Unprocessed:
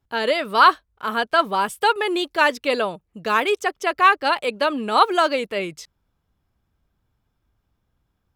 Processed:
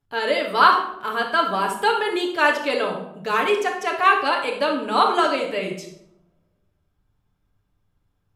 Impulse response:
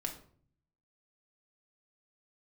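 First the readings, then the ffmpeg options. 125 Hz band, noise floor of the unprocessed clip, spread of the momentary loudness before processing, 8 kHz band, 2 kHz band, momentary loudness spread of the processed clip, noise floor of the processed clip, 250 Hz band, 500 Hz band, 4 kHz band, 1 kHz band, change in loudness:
can't be measured, −74 dBFS, 11 LU, −1.5 dB, −0.5 dB, 10 LU, −71 dBFS, −0.5 dB, 0.0 dB, −1.0 dB, −0.5 dB, −0.5 dB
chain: -filter_complex "[1:a]atrim=start_sample=2205,asetrate=26901,aresample=44100[link_01];[0:a][link_01]afir=irnorm=-1:irlink=0,volume=-4dB"

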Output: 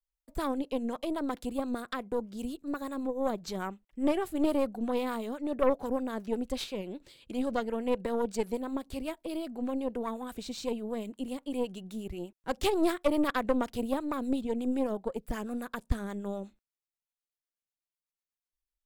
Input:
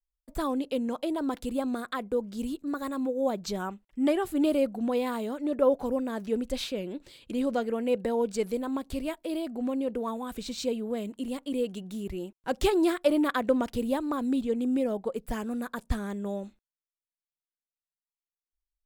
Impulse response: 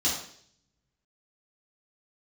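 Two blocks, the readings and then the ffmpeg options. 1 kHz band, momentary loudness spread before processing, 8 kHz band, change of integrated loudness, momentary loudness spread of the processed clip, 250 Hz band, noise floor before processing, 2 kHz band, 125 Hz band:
−1.0 dB, 10 LU, −3.0 dB, −3.0 dB, 10 LU, −3.0 dB, below −85 dBFS, −2.0 dB, −2.0 dB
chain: -filter_complex "[0:a]acrossover=split=550[link_01][link_02];[link_01]aeval=exprs='val(0)*(1-0.5/2+0.5/2*cos(2*PI*8.1*n/s))':channel_layout=same[link_03];[link_02]aeval=exprs='val(0)*(1-0.5/2-0.5/2*cos(2*PI*8.1*n/s))':channel_layout=same[link_04];[link_03][link_04]amix=inputs=2:normalize=0,aeval=exprs='0.2*(cos(1*acos(clip(val(0)/0.2,-1,1)))-cos(1*PI/2))+0.0355*(cos(4*acos(clip(val(0)/0.2,-1,1)))-cos(4*PI/2))':channel_layout=same,volume=-1.5dB"

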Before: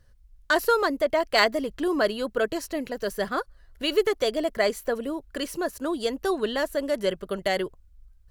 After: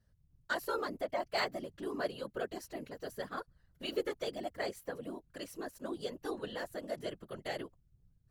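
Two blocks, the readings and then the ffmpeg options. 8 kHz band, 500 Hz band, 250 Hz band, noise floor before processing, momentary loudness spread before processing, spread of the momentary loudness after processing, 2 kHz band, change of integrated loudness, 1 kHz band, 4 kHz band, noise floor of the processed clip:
−13.5 dB, −14.0 dB, −13.5 dB, −56 dBFS, 9 LU, 9 LU, −13.5 dB, −13.5 dB, −12.5 dB, −13.5 dB, −71 dBFS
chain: -af "afftfilt=real='hypot(re,im)*cos(2*PI*random(0))':imag='hypot(re,im)*sin(2*PI*random(1))':win_size=512:overlap=0.75,volume=-7.5dB"

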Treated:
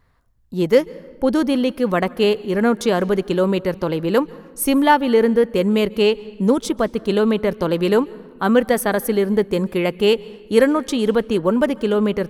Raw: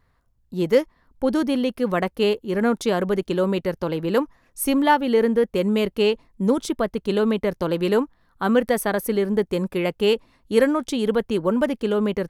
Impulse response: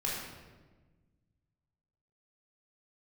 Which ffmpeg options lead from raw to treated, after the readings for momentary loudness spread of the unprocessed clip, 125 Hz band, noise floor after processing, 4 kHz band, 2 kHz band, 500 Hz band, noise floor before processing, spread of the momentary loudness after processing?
6 LU, +3.5 dB, −43 dBFS, +3.5 dB, +3.5 dB, +3.5 dB, −64 dBFS, 6 LU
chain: -filter_complex "[0:a]asplit=2[link_01][link_02];[1:a]atrim=start_sample=2205,adelay=139[link_03];[link_02][link_03]afir=irnorm=-1:irlink=0,volume=-26.5dB[link_04];[link_01][link_04]amix=inputs=2:normalize=0,volume=3.5dB"

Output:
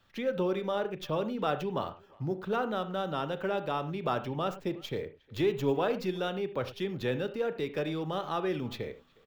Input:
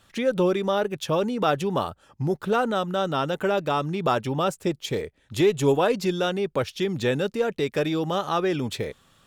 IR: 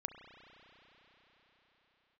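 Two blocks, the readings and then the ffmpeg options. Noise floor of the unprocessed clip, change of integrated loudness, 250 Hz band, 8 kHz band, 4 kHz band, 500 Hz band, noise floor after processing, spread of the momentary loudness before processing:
−63 dBFS, −8.0 dB, −8.0 dB, below −15 dB, −9.0 dB, −7.5 dB, −62 dBFS, 7 LU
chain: -filter_complex "[0:a]acrossover=split=200|1200|5900[link_01][link_02][link_03][link_04];[link_04]aeval=exprs='abs(val(0))':channel_layout=same[link_05];[link_01][link_02][link_03][link_05]amix=inputs=4:normalize=0,asplit=2[link_06][link_07];[link_07]adelay=360,highpass=300,lowpass=3400,asoftclip=type=hard:threshold=-18dB,volume=-25dB[link_08];[link_06][link_08]amix=inputs=2:normalize=0[link_09];[1:a]atrim=start_sample=2205,afade=type=out:start_time=0.15:duration=0.01,atrim=end_sample=7056[link_10];[link_09][link_10]afir=irnorm=-1:irlink=0,volume=-5dB"

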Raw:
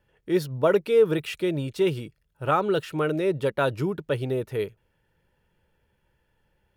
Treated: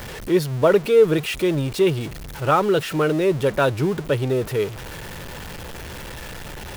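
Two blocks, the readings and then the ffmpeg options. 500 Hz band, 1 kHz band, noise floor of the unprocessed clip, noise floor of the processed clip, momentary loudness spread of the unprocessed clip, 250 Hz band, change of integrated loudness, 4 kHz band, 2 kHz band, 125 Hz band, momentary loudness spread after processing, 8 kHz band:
+5.0 dB, +5.0 dB, −72 dBFS, −35 dBFS, 10 LU, +5.5 dB, +5.0 dB, +7.0 dB, +6.0 dB, +6.5 dB, 18 LU, can't be measured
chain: -af "aeval=exprs='val(0)+0.5*0.0237*sgn(val(0))':channel_layout=same,volume=4dB"

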